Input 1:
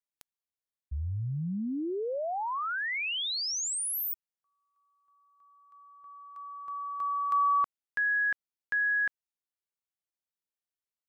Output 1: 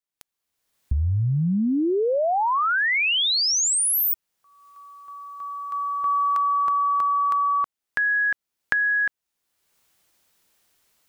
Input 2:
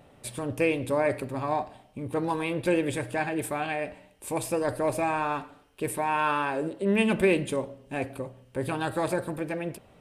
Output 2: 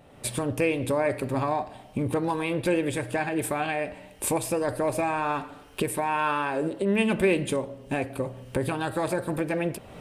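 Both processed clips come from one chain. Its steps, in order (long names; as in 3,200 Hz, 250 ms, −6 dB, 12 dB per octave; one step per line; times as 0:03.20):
camcorder AGC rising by 31 dB per second, up to +28 dB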